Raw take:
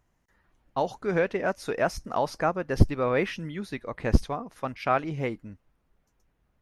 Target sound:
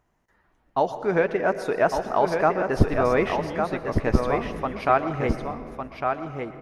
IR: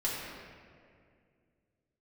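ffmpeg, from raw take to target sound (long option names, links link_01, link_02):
-filter_complex "[0:a]equalizer=frequency=680:width=0.35:gain=7.5,bandreject=frequency=530:width=14,aecho=1:1:1155:0.531,asplit=2[link_01][link_02];[1:a]atrim=start_sample=2205,adelay=116[link_03];[link_02][link_03]afir=irnorm=-1:irlink=0,volume=-18dB[link_04];[link_01][link_04]amix=inputs=2:normalize=0,volume=-2dB"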